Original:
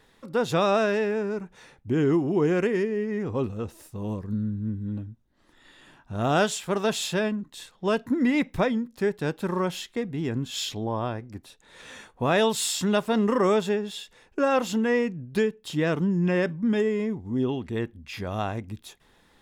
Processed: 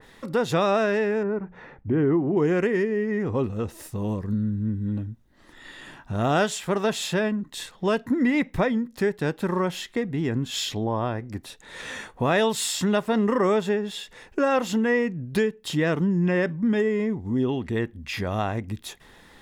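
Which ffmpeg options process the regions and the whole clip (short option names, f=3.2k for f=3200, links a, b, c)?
-filter_complex "[0:a]asettb=1/sr,asplit=3[a][b][c];[a]atrim=end=1.234[d];[b]atrim=start=1.23:end=2.37,asetpts=PTS-STARTPTS,afade=t=in:d=0.004:c=qsin,afade=t=out:st=1.136:d=0.004:c=qsin,lowpass=1.6k,bandreject=f=60:t=h:w=6,bandreject=f=120:t=h:w=6,bandreject=f=180:t=h:w=6[e];[c]atrim=start=2.366[f];[d][e]acrossfade=d=0.004:c1=hsin:c2=qsin[g];[g][f]acrossfade=d=0.004:c1=qsin:c2=hsin,equalizer=f=1.9k:w=7.1:g=5,acompressor=threshold=-41dB:ratio=1.5,adynamicequalizer=threshold=0.00355:dfrequency=2500:dqfactor=0.7:tfrequency=2500:tqfactor=0.7:attack=5:release=100:ratio=0.375:range=2:mode=cutabove:tftype=highshelf,volume=8.5dB"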